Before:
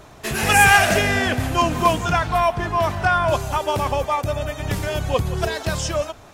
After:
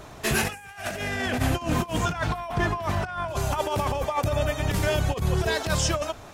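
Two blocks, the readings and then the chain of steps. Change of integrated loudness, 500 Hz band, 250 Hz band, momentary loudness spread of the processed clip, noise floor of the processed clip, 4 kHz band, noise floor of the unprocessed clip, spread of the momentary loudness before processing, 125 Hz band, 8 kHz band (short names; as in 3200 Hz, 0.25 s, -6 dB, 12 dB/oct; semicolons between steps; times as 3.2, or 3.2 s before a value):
-7.0 dB, -6.0 dB, -3.0 dB, 5 LU, -44 dBFS, -6.0 dB, -44 dBFS, 11 LU, -2.5 dB, -5.5 dB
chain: negative-ratio compressor -23 dBFS, ratio -0.5; gain -2.5 dB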